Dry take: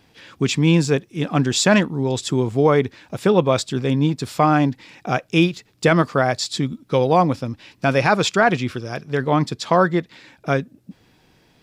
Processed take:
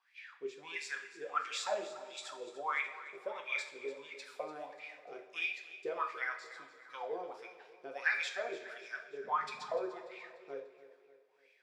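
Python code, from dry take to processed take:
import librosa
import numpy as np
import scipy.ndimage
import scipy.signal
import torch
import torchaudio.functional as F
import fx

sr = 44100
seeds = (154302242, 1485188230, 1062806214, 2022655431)

p1 = np.diff(x, prepend=0.0)
p2 = fx.wah_lfo(p1, sr, hz=1.5, low_hz=390.0, high_hz=2400.0, q=13.0)
p3 = fx.dmg_noise_band(p2, sr, seeds[0], low_hz=120.0, high_hz=260.0, level_db=-79.0, at=(9.22, 9.86), fade=0.02)
p4 = p3 + fx.echo_feedback(p3, sr, ms=294, feedback_pct=47, wet_db=-15.5, dry=0)
p5 = fx.rev_double_slope(p4, sr, seeds[1], early_s=0.48, late_s=2.4, knee_db=-16, drr_db=2.5)
y = p5 * librosa.db_to_amplitude(12.0)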